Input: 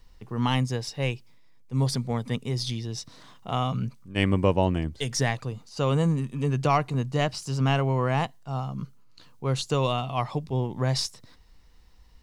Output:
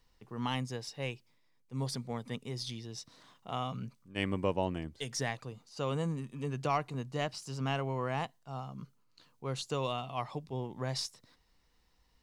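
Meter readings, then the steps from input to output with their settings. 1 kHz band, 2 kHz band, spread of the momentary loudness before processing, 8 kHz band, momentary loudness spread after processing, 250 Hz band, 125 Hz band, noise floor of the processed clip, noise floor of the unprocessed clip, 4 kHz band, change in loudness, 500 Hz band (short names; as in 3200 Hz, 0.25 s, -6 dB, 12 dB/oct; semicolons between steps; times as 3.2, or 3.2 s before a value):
-8.0 dB, -8.0 dB, 10 LU, -8.0 dB, 11 LU, -10.0 dB, -12.5 dB, -70 dBFS, -53 dBFS, -8.0 dB, -10.0 dB, -8.5 dB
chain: low shelf 110 Hz -10.5 dB; gain -8 dB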